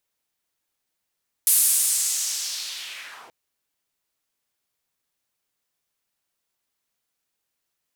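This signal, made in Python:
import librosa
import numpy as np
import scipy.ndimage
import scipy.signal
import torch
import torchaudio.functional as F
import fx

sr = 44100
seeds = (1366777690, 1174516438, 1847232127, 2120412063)

y = fx.riser_noise(sr, seeds[0], length_s=1.83, colour='white', kind='bandpass', start_hz=11000.0, end_hz=560.0, q=1.9, swell_db=-21, law='linear')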